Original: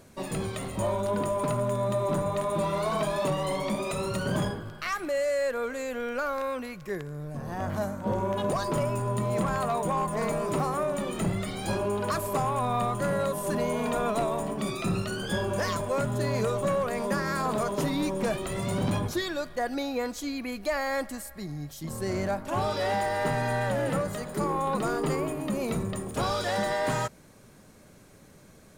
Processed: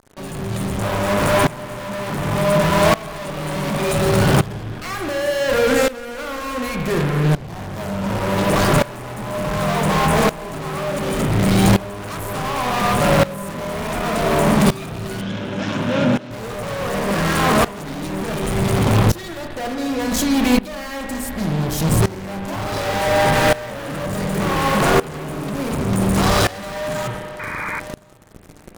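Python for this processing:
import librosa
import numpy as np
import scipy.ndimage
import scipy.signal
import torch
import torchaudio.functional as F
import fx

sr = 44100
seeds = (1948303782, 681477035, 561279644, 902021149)

p1 = fx.low_shelf(x, sr, hz=220.0, db=11.5)
p2 = fx.hum_notches(p1, sr, base_hz=60, count=9)
p3 = fx.over_compress(p2, sr, threshold_db=-33.0, ratio=-0.5, at=(19.73, 20.34), fade=0.02)
p4 = fx.fuzz(p3, sr, gain_db=43.0, gate_db=-43.0)
p5 = fx.cabinet(p4, sr, low_hz=150.0, low_slope=12, high_hz=5300.0, hz=(240.0, 430.0, 760.0, 1100.0, 1900.0, 4600.0), db=(8, -9, -7, -8, -7, -9), at=(15.21, 16.31))
p6 = p5 + fx.echo_single(p5, sr, ms=1063, db=-22.5, dry=0)
p7 = fx.rev_spring(p6, sr, rt60_s=1.5, pass_ms=(36, 46), chirp_ms=45, drr_db=3.5)
p8 = fx.spec_paint(p7, sr, seeds[0], shape='noise', start_s=27.39, length_s=0.41, low_hz=860.0, high_hz=2500.0, level_db=-23.0)
y = fx.tremolo_decay(p8, sr, direction='swelling', hz=0.68, depth_db=19)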